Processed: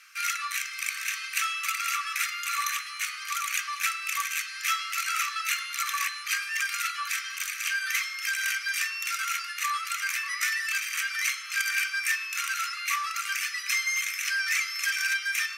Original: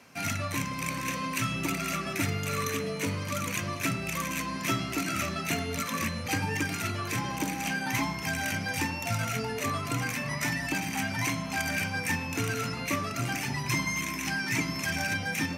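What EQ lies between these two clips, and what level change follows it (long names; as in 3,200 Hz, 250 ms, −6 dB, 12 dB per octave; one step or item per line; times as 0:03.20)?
linear-phase brick-wall high-pass 1,100 Hz
+4.5 dB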